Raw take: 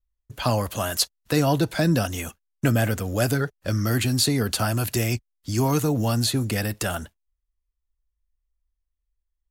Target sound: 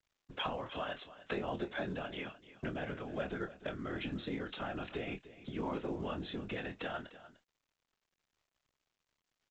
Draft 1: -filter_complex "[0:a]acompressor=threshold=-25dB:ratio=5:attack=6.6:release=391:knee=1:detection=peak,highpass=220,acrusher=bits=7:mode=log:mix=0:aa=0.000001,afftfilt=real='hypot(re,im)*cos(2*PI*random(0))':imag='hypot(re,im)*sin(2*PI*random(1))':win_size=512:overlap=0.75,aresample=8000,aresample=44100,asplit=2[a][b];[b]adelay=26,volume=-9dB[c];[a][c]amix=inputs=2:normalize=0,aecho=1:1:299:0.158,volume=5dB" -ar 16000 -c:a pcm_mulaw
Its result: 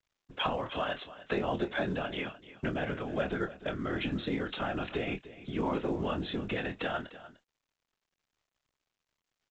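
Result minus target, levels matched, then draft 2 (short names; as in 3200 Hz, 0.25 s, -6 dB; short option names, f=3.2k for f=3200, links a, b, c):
compressor: peak gain reduction -6.5 dB
-filter_complex "[0:a]acompressor=threshold=-33dB:ratio=5:attack=6.6:release=391:knee=1:detection=peak,highpass=220,acrusher=bits=7:mode=log:mix=0:aa=0.000001,afftfilt=real='hypot(re,im)*cos(2*PI*random(0))':imag='hypot(re,im)*sin(2*PI*random(1))':win_size=512:overlap=0.75,aresample=8000,aresample=44100,asplit=2[a][b];[b]adelay=26,volume=-9dB[c];[a][c]amix=inputs=2:normalize=0,aecho=1:1:299:0.158,volume=5dB" -ar 16000 -c:a pcm_mulaw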